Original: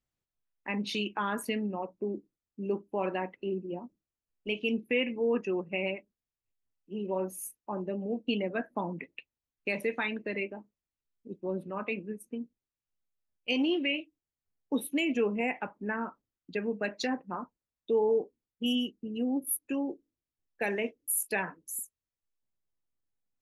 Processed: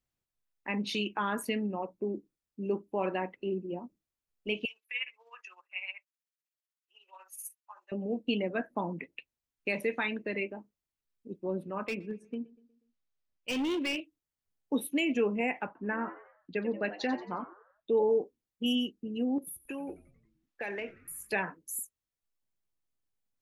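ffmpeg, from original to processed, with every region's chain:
-filter_complex "[0:a]asettb=1/sr,asplit=3[a][b][c];[a]atrim=end=4.654[d];[b]atrim=start=4.65:end=7.92,asetpts=PTS-STARTPTS,afade=t=in:d=0.004:c=qsin,afade=t=out:st=3.266:d=0.004:c=qsin,highpass=f=1.2k:w=0.5412,highpass=f=1.2k:w=1.3066,tremolo=f=16:d=0.63[e];[c]atrim=start=7.916[f];[d][e]acrossfade=d=0.004:c1=hsin:c2=qsin[g];[g][f]acrossfade=d=0.004:c1=qsin:c2=hsin,asettb=1/sr,asplit=3[h][i][j];[h]atrim=end=11.874[k];[i]atrim=start=11.87:end=14,asetpts=PTS-STARTPTS,afade=t=in:d=0.004:c=qsin,afade=t=out:st=2.126:d=0.004:c=qsin,lowpass=f=6.1k:w=0.5412,lowpass=f=6.1k:w=1.3066,asoftclip=type=hard:threshold=-28.5dB,asplit=2[l][m];[m]adelay=121,lowpass=f=2.4k:p=1,volume=-21.5dB,asplit=2[n][o];[o]adelay=121,lowpass=f=2.4k:p=1,volume=0.5,asplit=2[p][q];[q]adelay=121,lowpass=f=2.4k:p=1,volume=0.5,asplit=2[r][s];[s]adelay=121,lowpass=f=2.4k:p=1,volume=0.5[t];[l][n][p][r][t]amix=inputs=5:normalize=0,atrim=end_sample=93933[u];[j]atrim=start=13.996[v];[k][u]acrossfade=d=0.004:c1=hsin:c2=qsin[w];[w][v]acrossfade=d=0.004:c1=qsin:c2=hsin,asettb=1/sr,asplit=3[x][y][z];[x]atrim=end=15.664[aa];[y]atrim=start=15.66:end=18.03,asetpts=PTS-STARTPTS,afade=t=in:d=0.004:c=qsin,afade=t=out:st=2.366:d=0.004:c=qsin,lowpass=3.7k,asplit=5[ab][ac][ad][ae][af];[ac]adelay=90,afreqshift=100,volume=-14dB[ag];[ad]adelay=180,afreqshift=200,volume=-21.3dB[ah];[ae]adelay=270,afreqshift=300,volume=-28.7dB[ai];[af]adelay=360,afreqshift=400,volume=-36dB[aj];[ab][ag][ah][ai][aj]amix=inputs=5:normalize=0,atrim=end_sample=104517[ak];[z]atrim=start=18.026[al];[aa][ak]acrossfade=d=0.004:c1=hsin:c2=qsin[am];[am][al]acrossfade=d=0.004:c1=qsin:c2=hsin,asettb=1/sr,asplit=3[an][ao][ap];[an]atrim=end=19.384[aq];[ao]atrim=start=19.38:end=21.33,asetpts=PTS-STARTPTS,afade=t=in:d=0.004:c=qsin,afade=t=out:st=1.946:d=0.004:c=qsin,acompressor=threshold=-35dB:ratio=8:attack=3.2:release=140:knee=1:detection=peak,asplit=2[ar][as];[as]highpass=f=720:p=1,volume=11dB,asoftclip=type=tanh:threshold=-21.5dB[at];[ar][at]amix=inputs=2:normalize=0,lowpass=f=3.2k:p=1,volume=-6dB,asplit=7[au][av][aw][ax][ay][az][ba];[av]adelay=90,afreqshift=-100,volume=-21dB[bb];[aw]adelay=180,afreqshift=-200,volume=-24.7dB[bc];[ax]adelay=270,afreqshift=-300,volume=-28.5dB[bd];[ay]adelay=360,afreqshift=-400,volume=-32.2dB[be];[az]adelay=450,afreqshift=-500,volume=-36dB[bf];[ba]adelay=540,afreqshift=-600,volume=-39.7dB[bg];[au][bb][bc][bd][be][bf][bg]amix=inputs=7:normalize=0,atrim=end_sample=85995[bh];[ap]atrim=start=21.326[bi];[aq][bh]acrossfade=d=0.004:c1=hsin:c2=qsin[bj];[bj][bi]acrossfade=d=0.004:c1=qsin:c2=hsin"

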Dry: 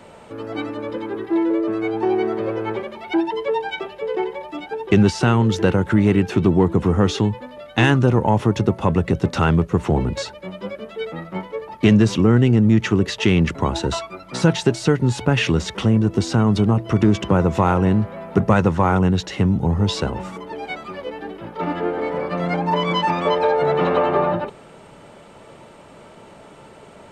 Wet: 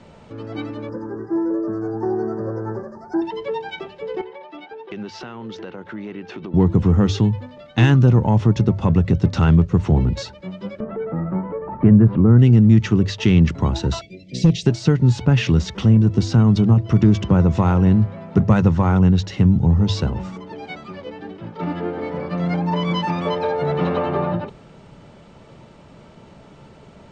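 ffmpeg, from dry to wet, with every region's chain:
-filter_complex "[0:a]asettb=1/sr,asplit=3[a][b][c];[a]atrim=end=0.894[d];[b]atrim=start=0.89:end=3.22,asetpts=PTS-STARTPTS,afade=t=in:d=0.004:c=qsin,afade=t=out:st=2.326:d=0.004:c=qsin,asuperstop=centerf=2900:order=12:qfactor=0.99,equalizer=f=4.3k:t=o:w=0.24:g=-6.5[e];[c]atrim=start=3.216[f];[d][e]acrossfade=d=0.004:c1=hsin:c2=qsin[g];[g][f]acrossfade=d=0.004:c1=qsin:c2=hsin,asettb=1/sr,asplit=3[h][i][j];[h]atrim=end=4.214[k];[i]atrim=start=4.21:end=6.54,asetpts=PTS-STARTPTS,afade=t=in:d=0.004:c=qsin,afade=t=out:st=2.326:d=0.004:c=qsin,highpass=380,lowpass=3.7k,acompressor=threshold=-28dB:ratio=4:attack=3.2:release=140:knee=1:detection=peak[l];[j]atrim=start=6.536[m];[k][l]acrossfade=d=0.004:c1=hsin:c2=qsin[n];[n][m]acrossfade=d=0.004:c1=qsin:c2=hsin,asettb=1/sr,asplit=3[o][p][q];[o]atrim=end=10.804[r];[p]atrim=start=10.8:end=12.39,asetpts=PTS-STARTPTS,afade=t=in:d=0.004:c=qsin,afade=t=out:st=1.586:d=0.004:c=qsin,lowpass=f=1.5k:w=0.5412,lowpass=f=1.5k:w=1.3066,acompressor=mode=upward:threshold=-15dB:ratio=2.5:attack=3.2:release=140:knee=2.83:detection=peak[s];[q]atrim=start=12.386[t];[r][s]acrossfade=d=0.004:c1=hsin:c2=qsin[u];[u][t]acrossfade=d=0.004:c1=qsin:c2=hsin,asettb=1/sr,asplit=3[v][w][x];[v]atrim=end=14.014[y];[w]atrim=start=14.01:end=14.66,asetpts=PTS-STARTPTS,afade=t=in:d=0.004:c=qsin,afade=t=out:st=0.646:d=0.004:c=qsin,asuperstop=centerf=1100:order=8:qfactor=0.69,asoftclip=type=hard:threshold=-9.5dB[z];[x]atrim=start=14.656[aa];[y][z]acrossfade=d=0.004:c1=hsin:c2=qsin[ab];[ab][aa]acrossfade=d=0.004:c1=qsin:c2=hsin,lowpass=f=6.2k:w=0.5412,lowpass=f=6.2k:w=1.3066,bass=f=250:g=11,treble=f=4k:g=6,bandreject=f=50:t=h:w=6,bandreject=f=100:t=h:w=6,volume=-5dB"

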